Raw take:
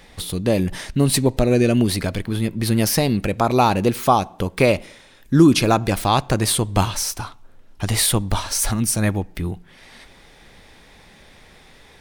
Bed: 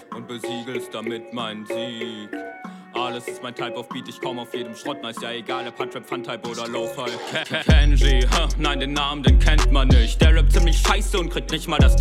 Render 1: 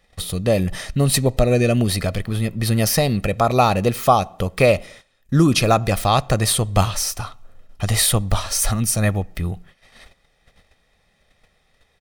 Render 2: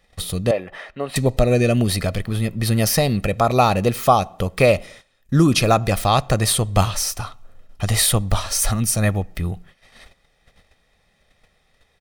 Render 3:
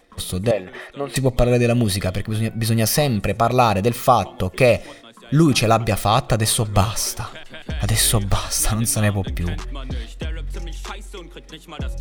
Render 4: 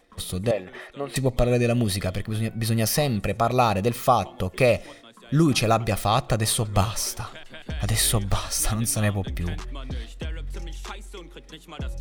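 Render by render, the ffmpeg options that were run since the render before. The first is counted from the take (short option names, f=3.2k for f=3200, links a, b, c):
-af "aecho=1:1:1.6:0.47,agate=range=-16dB:threshold=-42dB:ratio=16:detection=peak"
-filter_complex "[0:a]asettb=1/sr,asplit=3[a][b][c];[a]atrim=end=0.514[d];[b]atrim=start=0.51:end=1.16,asetpts=PTS-STARTPTS,afade=t=in:d=0.004:c=qsin,afade=t=out:st=0.646:d=0.004:c=qsin,acrossover=split=360 2800:gain=0.0708 1 0.0631[e][f][g];[e][f][g]amix=inputs=3:normalize=0[h];[c]atrim=start=1.156[i];[d][h]acrossfade=d=0.004:c1=hsin:c2=qsin[j];[j][i]acrossfade=d=0.004:c1=qsin:c2=hsin"
-filter_complex "[1:a]volume=-13.5dB[a];[0:a][a]amix=inputs=2:normalize=0"
-af "volume=-4.5dB"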